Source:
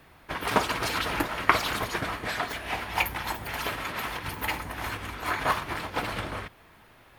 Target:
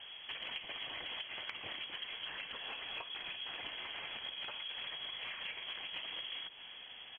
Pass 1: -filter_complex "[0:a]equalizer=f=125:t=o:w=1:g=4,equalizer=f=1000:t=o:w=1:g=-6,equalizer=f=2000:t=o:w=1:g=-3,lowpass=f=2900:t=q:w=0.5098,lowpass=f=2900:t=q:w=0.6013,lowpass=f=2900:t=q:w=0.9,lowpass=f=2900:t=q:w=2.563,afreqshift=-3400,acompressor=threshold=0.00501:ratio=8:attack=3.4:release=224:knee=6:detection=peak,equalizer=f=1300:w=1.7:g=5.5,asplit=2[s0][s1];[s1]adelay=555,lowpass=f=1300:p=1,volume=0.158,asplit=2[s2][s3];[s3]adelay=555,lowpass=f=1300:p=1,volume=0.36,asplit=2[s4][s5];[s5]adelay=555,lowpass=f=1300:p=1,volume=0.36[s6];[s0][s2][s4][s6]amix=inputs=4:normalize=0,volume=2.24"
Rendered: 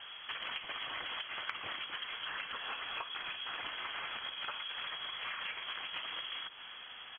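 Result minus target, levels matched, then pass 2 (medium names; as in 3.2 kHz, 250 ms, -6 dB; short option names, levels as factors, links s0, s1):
1 kHz band +5.5 dB
-filter_complex "[0:a]equalizer=f=125:t=o:w=1:g=4,equalizer=f=1000:t=o:w=1:g=-6,equalizer=f=2000:t=o:w=1:g=-3,lowpass=f=2900:t=q:w=0.5098,lowpass=f=2900:t=q:w=0.6013,lowpass=f=2900:t=q:w=0.9,lowpass=f=2900:t=q:w=2.563,afreqshift=-3400,acompressor=threshold=0.00501:ratio=8:attack=3.4:release=224:knee=6:detection=peak,equalizer=f=1300:w=1.7:g=-6,asplit=2[s0][s1];[s1]adelay=555,lowpass=f=1300:p=1,volume=0.158,asplit=2[s2][s3];[s3]adelay=555,lowpass=f=1300:p=1,volume=0.36,asplit=2[s4][s5];[s5]adelay=555,lowpass=f=1300:p=1,volume=0.36[s6];[s0][s2][s4][s6]amix=inputs=4:normalize=0,volume=2.24"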